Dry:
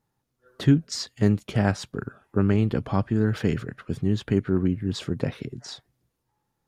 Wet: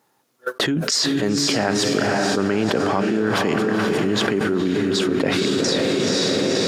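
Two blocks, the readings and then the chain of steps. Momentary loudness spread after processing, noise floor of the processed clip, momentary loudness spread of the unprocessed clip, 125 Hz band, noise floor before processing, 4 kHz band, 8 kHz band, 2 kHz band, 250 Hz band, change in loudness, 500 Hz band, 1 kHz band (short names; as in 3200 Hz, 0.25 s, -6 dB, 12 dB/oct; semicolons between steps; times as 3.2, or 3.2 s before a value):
2 LU, -64 dBFS, 14 LU, -3.5 dB, -78 dBFS, +16.0 dB, +15.5 dB, +13.0 dB, +4.5 dB, +5.5 dB, +10.0 dB, +11.5 dB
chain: HPF 330 Hz 12 dB/oct; gate -56 dBFS, range -24 dB; on a send: diffused feedback echo 0.497 s, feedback 50%, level -6 dB; on the sum: fast leveller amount 100%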